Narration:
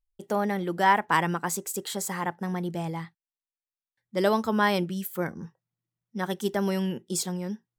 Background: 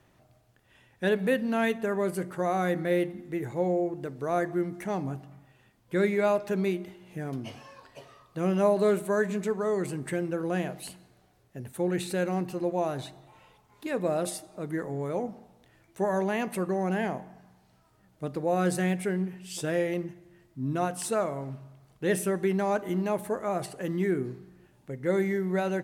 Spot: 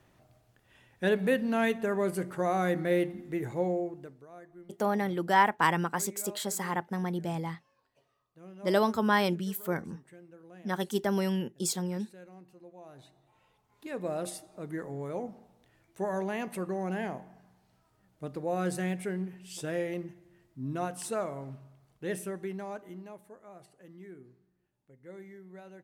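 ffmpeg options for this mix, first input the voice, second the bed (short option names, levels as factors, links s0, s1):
-filter_complex "[0:a]adelay=4500,volume=0.794[s0];[1:a]volume=6.68,afade=t=out:st=3.52:d=0.75:silence=0.0841395,afade=t=in:st=12.81:d=1.48:silence=0.133352,afade=t=out:st=21.51:d=1.72:silence=0.158489[s1];[s0][s1]amix=inputs=2:normalize=0"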